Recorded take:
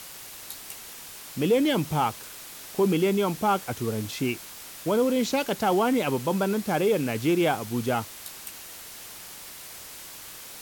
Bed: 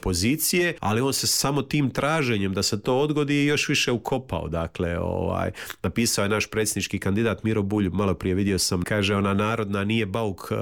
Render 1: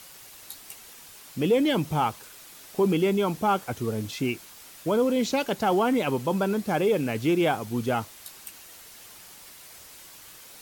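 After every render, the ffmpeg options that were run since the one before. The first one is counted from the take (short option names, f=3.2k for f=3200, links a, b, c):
-af "afftdn=nr=6:nf=-43"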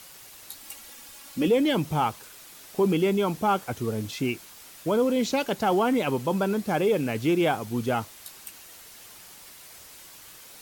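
-filter_complex "[0:a]asettb=1/sr,asplit=3[a][b][c];[a]atrim=end=0.604[d];[b]atrim=start=0.6:end=1.48,asetpts=PTS-STARTPTS,afade=t=in:d=0.004:c=qsin,afade=t=out:st=0.876:d=0.004:c=qsin,aecho=1:1:3.6:0.65,atrim=end_sample=38808[e];[c]atrim=start=1.476[f];[d][e]acrossfade=d=0.004:c1=hsin:c2=qsin[g];[g][f]acrossfade=d=0.004:c1=qsin:c2=hsin"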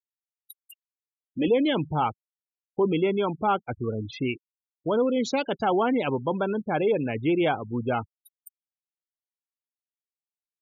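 -af "afftfilt=real='re*gte(hypot(re,im),0.0316)':imag='im*gte(hypot(re,im),0.0316)':win_size=1024:overlap=0.75,equalizer=f=190:t=o:w=0.35:g=-4"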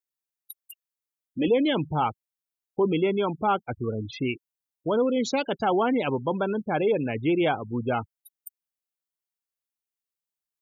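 -af "highshelf=f=9.2k:g=7"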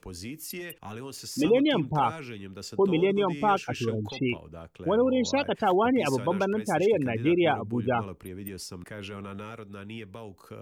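-filter_complex "[1:a]volume=-16.5dB[a];[0:a][a]amix=inputs=2:normalize=0"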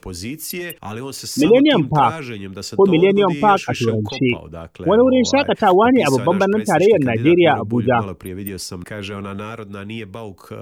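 -af "volume=10.5dB,alimiter=limit=-3dB:level=0:latency=1"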